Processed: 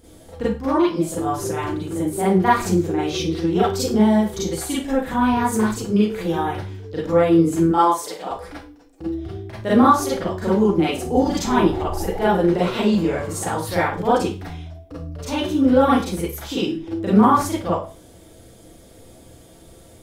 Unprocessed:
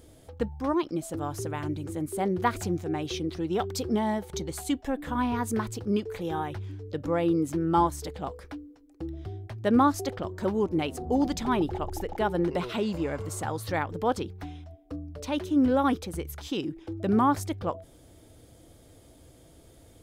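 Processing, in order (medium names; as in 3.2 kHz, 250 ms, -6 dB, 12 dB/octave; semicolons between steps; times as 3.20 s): 7.66–8.31 s: high-pass 390 Hz 12 dB/octave; Schroeder reverb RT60 0.33 s, combs from 33 ms, DRR -8.5 dB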